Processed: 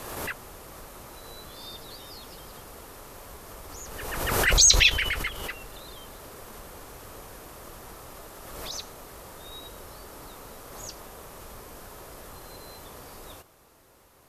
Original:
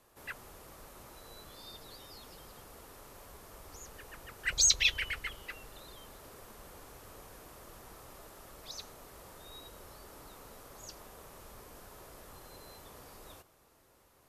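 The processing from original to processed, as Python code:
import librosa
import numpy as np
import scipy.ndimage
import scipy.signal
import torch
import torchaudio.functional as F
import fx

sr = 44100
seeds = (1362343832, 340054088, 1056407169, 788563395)

y = fx.pre_swell(x, sr, db_per_s=34.0)
y = y * 10.0 ** (7.5 / 20.0)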